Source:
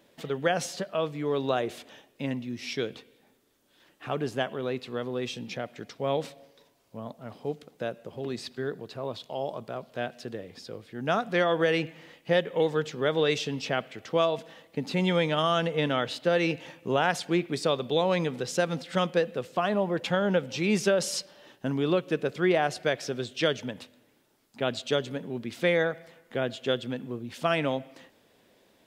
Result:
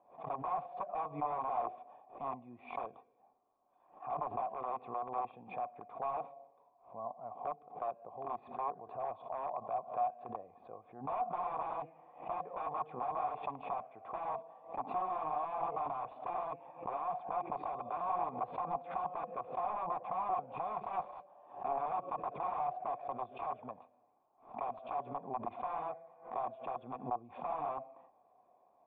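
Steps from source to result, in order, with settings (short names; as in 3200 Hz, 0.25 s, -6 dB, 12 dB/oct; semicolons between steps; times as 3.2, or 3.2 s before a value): wrapped overs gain 25.5 dB; vocal tract filter a; backwards sustainer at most 140 dB/s; gain +8.5 dB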